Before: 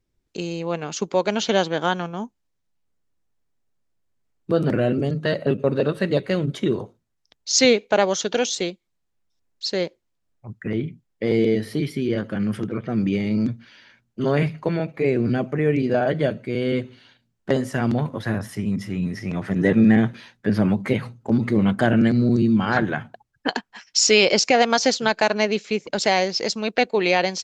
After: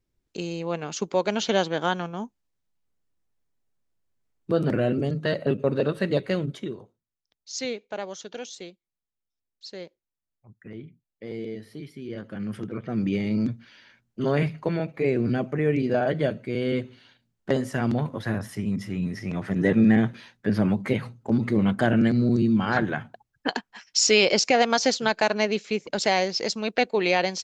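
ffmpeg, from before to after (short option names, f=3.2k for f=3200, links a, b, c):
-af "volume=9dB,afade=t=out:st=6.32:d=0.44:silence=0.251189,afade=t=in:st=11.96:d=1.22:silence=0.251189"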